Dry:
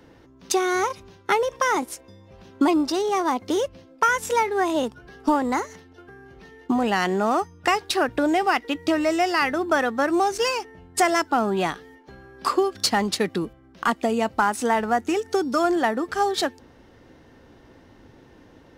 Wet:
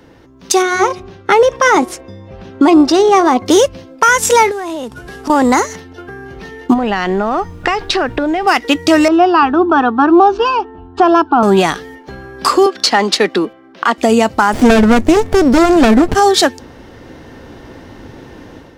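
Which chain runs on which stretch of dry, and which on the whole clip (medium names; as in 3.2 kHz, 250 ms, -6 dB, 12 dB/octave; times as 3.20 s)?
0.62–3.46 s: low-pass 2.5 kHz 6 dB/octave + band-stop 1 kHz, Q 17 + de-hum 364.6 Hz, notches 3
4.51–5.30 s: CVSD coder 64 kbps + compression 16:1, threshold -33 dBFS
6.73–8.46 s: low-pass 3.8 kHz + compression, threshold -27 dBFS + added noise brown -51 dBFS
9.08–11.43 s: low-pass 2.9 kHz 24 dB/octave + static phaser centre 550 Hz, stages 6
12.66–13.98 s: high-pass 150 Hz 6 dB/octave + three-band isolator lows -19 dB, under 220 Hz, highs -13 dB, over 5 kHz
14.53–16.15 s: bass shelf 350 Hz +9 dB + sliding maximum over 33 samples
whole clip: dynamic bell 6.6 kHz, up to +5 dB, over -44 dBFS, Q 0.82; level rider gain up to 8.5 dB; peak limiter -8.5 dBFS; trim +7.5 dB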